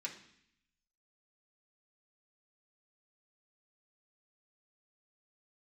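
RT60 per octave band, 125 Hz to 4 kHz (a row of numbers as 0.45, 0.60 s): 1.0, 0.90, 0.65, 0.70, 0.85, 0.80 s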